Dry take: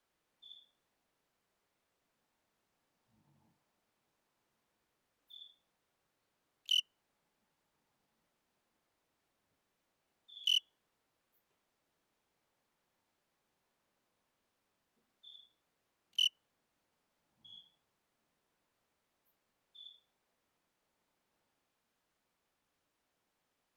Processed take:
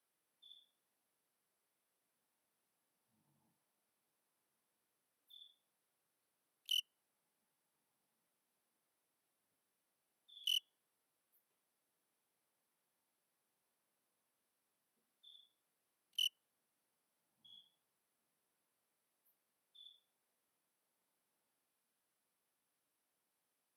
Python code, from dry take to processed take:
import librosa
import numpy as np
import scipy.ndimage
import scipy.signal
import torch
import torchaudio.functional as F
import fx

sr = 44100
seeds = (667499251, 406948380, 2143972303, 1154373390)

y = scipy.signal.sosfilt(scipy.signal.butter(2, 130.0, 'highpass', fs=sr, output='sos'), x)
y = fx.peak_eq(y, sr, hz=11000.0, db=13.5, octaves=0.73)
y = fx.notch(y, sr, hz=6900.0, q=5.8)
y = y * librosa.db_to_amplitude(-7.0)